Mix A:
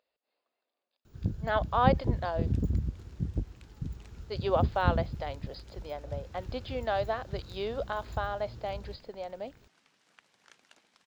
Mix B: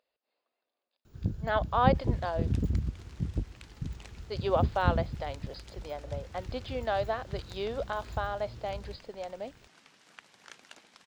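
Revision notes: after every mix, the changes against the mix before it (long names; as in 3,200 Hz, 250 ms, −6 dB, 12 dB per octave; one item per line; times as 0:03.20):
second sound +8.5 dB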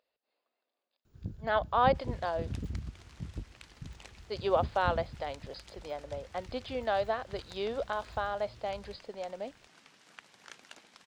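first sound −8.5 dB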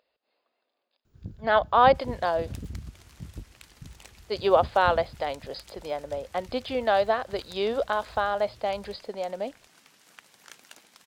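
speech +7.5 dB
second sound: remove high-frequency loss of the air 67 metres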